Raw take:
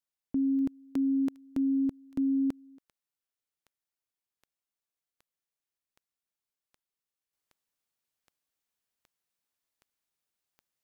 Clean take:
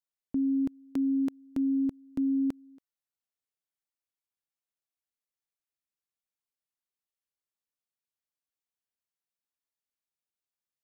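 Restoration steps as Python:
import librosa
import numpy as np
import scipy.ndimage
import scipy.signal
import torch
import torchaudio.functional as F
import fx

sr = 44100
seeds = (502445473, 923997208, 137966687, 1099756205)

y = fx.fix_declick_ar(x, sr, threshold=10.0)
y = fx.gain(y, sr, db=fx.steps((0.0, 0.0), (7.33, -6.0)))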